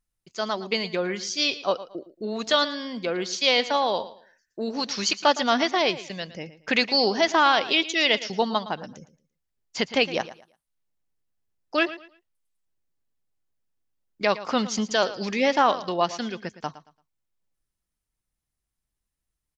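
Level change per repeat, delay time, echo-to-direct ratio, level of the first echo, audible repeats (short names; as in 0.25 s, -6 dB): -11.5 dB, 0.113 s, -15.0 dB, -15.5 dB, 2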